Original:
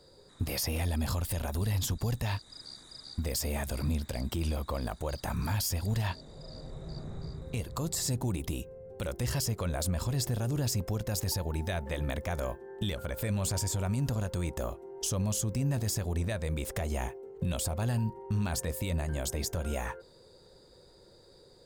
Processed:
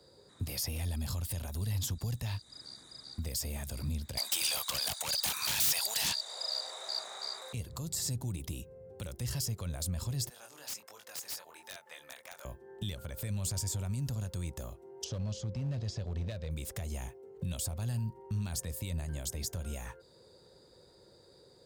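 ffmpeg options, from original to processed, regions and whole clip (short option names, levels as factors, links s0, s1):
-filter_complex "[0:a]asettb=1/sr,asplit=3[s0][s1][s2];[s0]atrim=end=4.174[s3];[s1]atrim=start=4.17:end=7.53,asetpts=PTS-STARTPTS,afade=t=in:d=0.004:c=qsin,afade=t=out:st=3.356:d=0.004:c=qsin,highpass=f=730:w=0.5412,highpass=f=730:w=1.3066,aeval=exprs='0.0841*sin(PI/2*7.08*val(0)/0.0841)':c=same[s4];[s2]atrim=start=7.526[s5];[s3][s4]acrossfade=d=0.004:c1=hsin:c2=qsin[s6];[s6][s5]acrossfade=d=0.004:c1=qsin:c2=hsin,asettb=1/sr,asplit=3[s7][s8][s9];[s7]atrim=end=10.294[s10];[s8]atrim=start=10.29:end=12.45,asetpts=PTS-STARTPTS,afade=t=in:d=0.004:c=qsin,afade=t=out:st=2.156:d=0.004:c=qsin,highpass=970,flanger=delay=20:depth=6.7:speed=1.4,aeval=exprs='(mod(29.9*val(0)+1,2)-1)/29.9':c=same[s11];[s9]atrim=start=12.446[s12];[s10][s11]acrossfade=d=0.004:c1=hsin:c2=qsin[s13];[s13][s12]acrossfade=d=0.004:c1=qsin:c2=hsin,asettb=1/sr,asplit=3[s14][s15][s16];[s14]atrim=end=15.044[s17];[s15]atrim=start=15.04:end=16.51,asetpts=PTS-STARTPTS,afade=t=in:d=0.004:c=qsin,afade=t=out:st=1.466:d=0.004:c=qsin,lowpass=f=4800:w=0.5412,lowpass=f=4800:w=1.3066,equalizer=f=540:t=o:w=0.65:g=8,asoftclip=type=hard:threshold=0.0562[s18];[s16]atrim=start=16.506[s19];[s17][s18]acrossfade=d=0.004:c1=hsin:c2=qsin[s20];[s20][s19]acrossfade=d=0.004:c1=qsin:c2=hsin,highpass=65,acrossover=split=170|3000[s21][s22][s23];[s22]acompressor=threshold=0.00398:ratio=2.5[s24];[s21][s24][s23]amix=inputs=3:normalize=0,volume=0.794"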